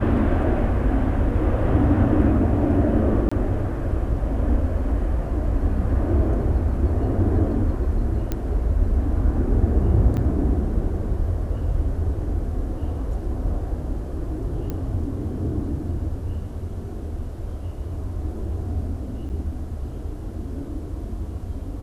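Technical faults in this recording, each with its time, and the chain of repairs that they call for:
3.29–3.31 s: dropout 25 ms
8.32 s: pop -12 dBFS
10.17–10.18 s: dropout 6.9 ms
14.70 s: pop -16 dBFS
19.29–19.30 s: dropout 7.3 ms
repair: de-click; interpolate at 3.29 s, 25 ms; interpolate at 10.17 s, 6.9 ms; interpolate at 19.29 s, 7.3 ms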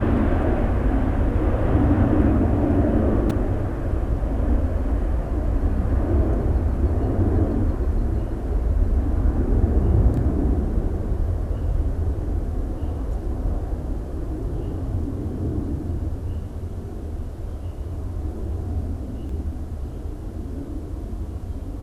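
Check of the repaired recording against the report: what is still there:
nothing left

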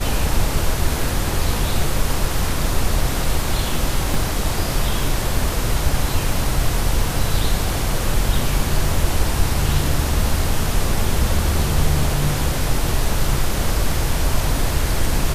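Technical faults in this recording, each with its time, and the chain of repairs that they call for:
4.14 s: dropout 2.2 ms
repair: interpolate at 4.14 s, 2.2 ms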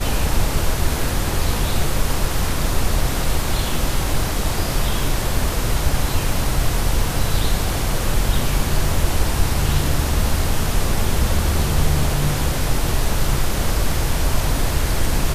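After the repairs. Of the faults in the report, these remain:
nothing left

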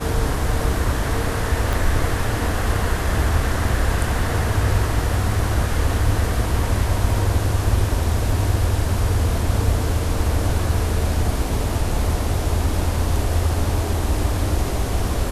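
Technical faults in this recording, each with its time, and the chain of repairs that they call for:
1.73 s: pop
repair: de-click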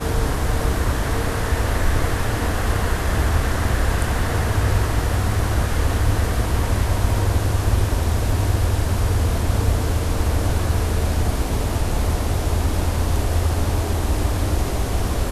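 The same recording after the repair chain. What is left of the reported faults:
1.73 s: pop

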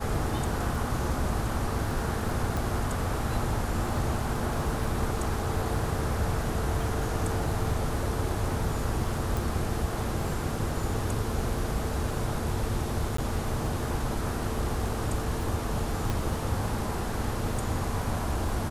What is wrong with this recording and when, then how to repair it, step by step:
crackle 26 per s -36 dBFS
2.57 s: pop
9.37 s: pop
13.17–13.18 s: dropout 14 ms
16.10 s: pop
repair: de-click; interpolate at 13.17 s, 14 ms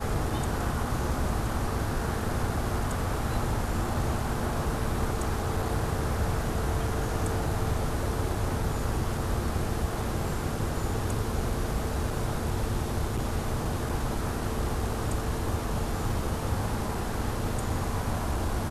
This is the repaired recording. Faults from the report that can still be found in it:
16.10 s: pop

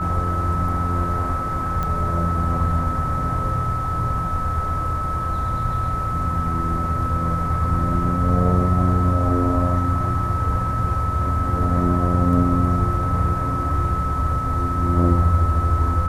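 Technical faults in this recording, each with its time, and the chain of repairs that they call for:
whine 1.3 kHz -24 dBFS
1.83 s: pop -13 dBFS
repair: de-click; band-stop 1.3 kHz, Q 30

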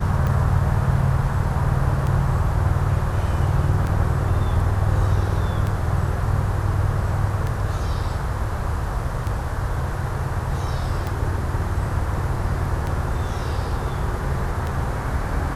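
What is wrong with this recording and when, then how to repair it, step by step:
tick 33 1/3 rpm -14 dBFS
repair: de-click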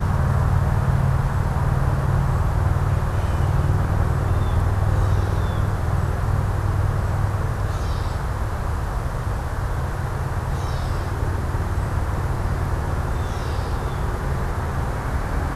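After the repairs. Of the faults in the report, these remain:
nothing left

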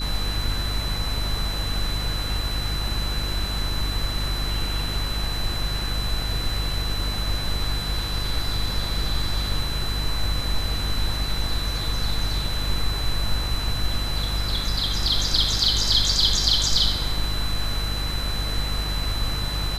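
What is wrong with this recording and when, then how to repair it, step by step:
hum 50 Hz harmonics 7 -28 dBFS
whine 4 kHz -30 dBFS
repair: band-stop 4 kHz, Q 30; de-hum 50 Hz, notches 7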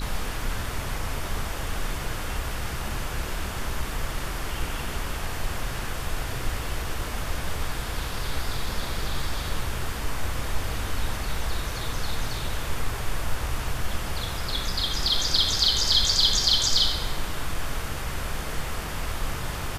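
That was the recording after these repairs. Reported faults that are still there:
nothing left

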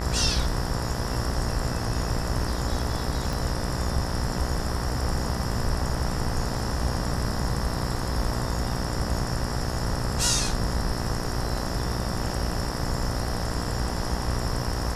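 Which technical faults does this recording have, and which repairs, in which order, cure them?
buzz 60 Hz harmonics 33 -31 dBFS
3.33 s: pop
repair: de-click; de-hum 60 Hz, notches 33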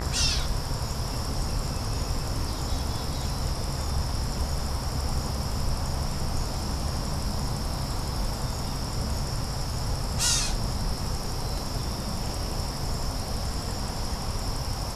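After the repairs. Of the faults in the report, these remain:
3.33 s: pop

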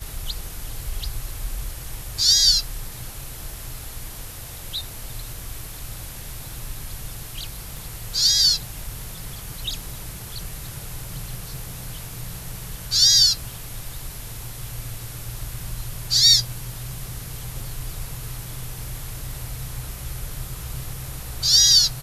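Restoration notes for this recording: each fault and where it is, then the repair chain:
7.77 s: pop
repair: de-click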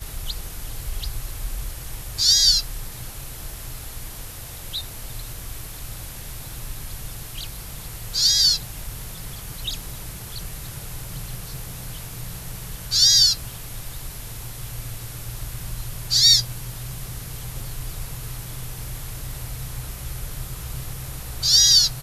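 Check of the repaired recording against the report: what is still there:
7.77 s: pop

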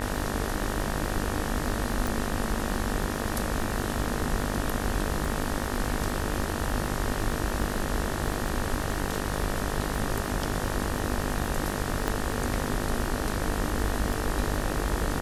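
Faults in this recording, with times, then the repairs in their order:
buzz 50 Hz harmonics 38 -33 dBFS
crackle 29 per s -33 dBFS
2.07 s: pop
12.08 s: pop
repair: de-click; de-hum 50 Hz, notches 38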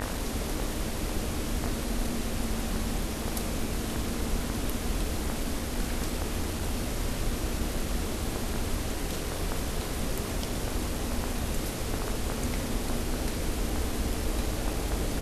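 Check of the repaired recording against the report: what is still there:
12.08 s: pop

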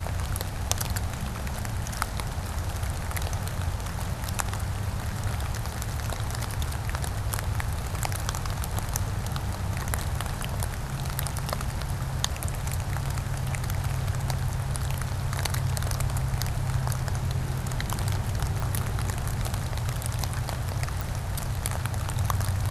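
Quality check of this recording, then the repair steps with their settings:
18.60 s: pop
21.01 s: pop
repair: de-click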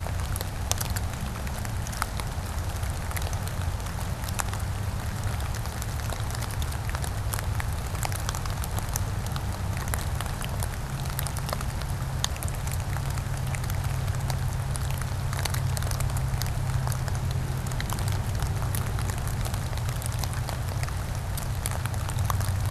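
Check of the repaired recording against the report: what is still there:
nothing left

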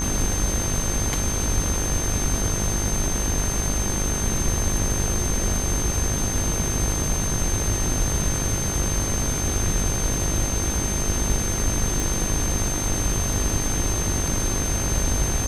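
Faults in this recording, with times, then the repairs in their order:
buzz 50 Hz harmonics 39 -29 dBFS
whine 6.3 kHz -27 dBFS
12.00 s: pop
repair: de-click; de-hum 50 Hz, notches 39; band-stop 6.3 kHz, Q 30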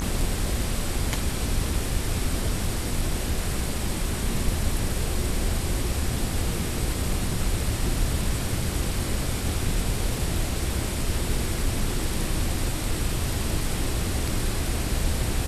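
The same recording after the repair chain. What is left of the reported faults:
nothing left

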